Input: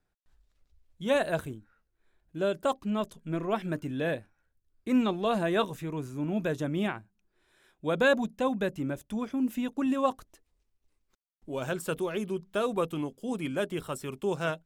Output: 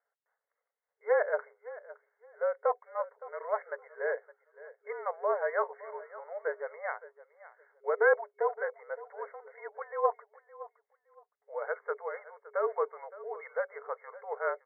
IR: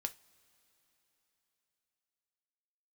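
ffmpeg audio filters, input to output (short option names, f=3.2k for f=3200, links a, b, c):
-af "afreqshift=-47,aecho=1:1:565|1130:0.133|0.028,afftfilt=real='re*between(b*sr/4096,410,2200)':imag='im*between(b*sr/4096,410,2200)':win_size=4096:overlap=0.75"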